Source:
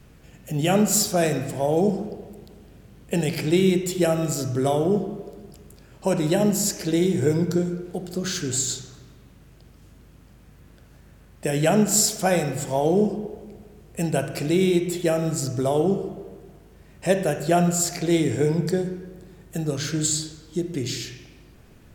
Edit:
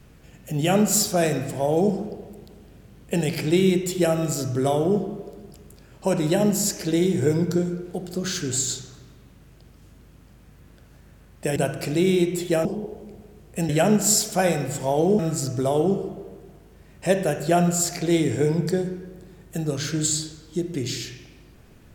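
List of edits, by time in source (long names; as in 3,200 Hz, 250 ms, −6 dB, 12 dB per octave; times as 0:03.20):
0:11.56–0:13.06: swap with 0:14.10–0:15.19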